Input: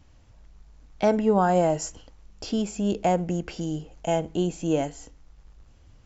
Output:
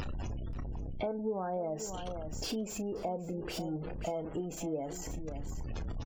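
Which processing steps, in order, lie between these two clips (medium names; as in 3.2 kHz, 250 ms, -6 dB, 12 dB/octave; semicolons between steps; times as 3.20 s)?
jump at every zero crossing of -26 dBFS; upward compressor, threshold -31 dBFS; spectral gate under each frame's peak -25 dB strong; on a send: delay 532 ms -14.5 dB; on the sum: dynamic bell 480 Hz, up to +7 dB, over -34 dBFS, Q 1.1; compression 4:1, threshold -33 dBFS, peak gain reduction 19 dB; doubling 32 ms -13 dB; trim -3.5 dB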